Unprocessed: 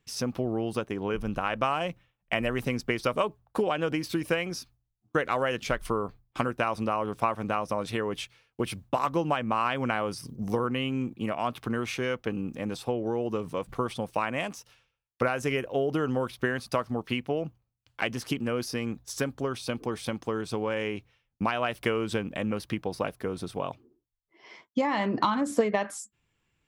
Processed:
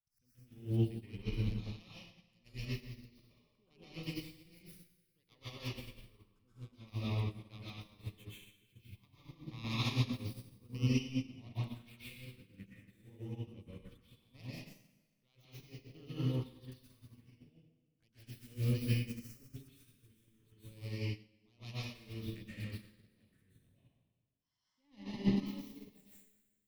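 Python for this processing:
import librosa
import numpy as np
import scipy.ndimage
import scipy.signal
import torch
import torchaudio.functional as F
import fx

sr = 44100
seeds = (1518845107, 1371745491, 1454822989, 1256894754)

y = fx.tracing_dist(x, sr, depth_ms=0.26)
y = fx.env_phaser(y, sr, low_hz=350.0, high_hz=1500.0, full_db=-26.0)
y = fx.harmonic_tremolo(y, sr, hz=1.4, depth_pct=50, crossover_hz=760.0)
y = fx.auto_swell(y, sr, attack_ms=223.0)
y = fx.tone_stack(y, sr, knobs='6-0-2')
y = fx.rev_plate(y, sr, seeds[0], rt60_s=1.6, hf_ratio=0.9, predelay_ms=110, drr_db=-9.5)
y = fx.upward_expand(y, sr, threshold_db=-55.0, expansion=2.5)
y = F.gain(torch.from_numpy(y), 12.5).numpy()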